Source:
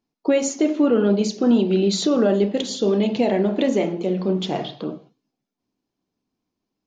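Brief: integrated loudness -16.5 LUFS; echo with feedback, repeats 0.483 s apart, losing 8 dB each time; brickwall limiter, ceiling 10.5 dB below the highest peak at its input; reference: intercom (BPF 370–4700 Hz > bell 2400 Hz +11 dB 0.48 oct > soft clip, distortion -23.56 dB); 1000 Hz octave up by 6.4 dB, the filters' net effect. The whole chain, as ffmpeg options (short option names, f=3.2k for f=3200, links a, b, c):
-af "equalizer=f=1k:t=o:g=9,alimiter=limit=-16dB:level=0:latency=1,highpass=370,lowpass=4.7k,equalizer=f=2.4k:t=o:w=0.48:g=11,aecho=1:1:483|966|1449|1932|2415:0.398|0.159|0.0637|0.0255|0.0102,asoftclip=threshold=-16dB,volume=11dB"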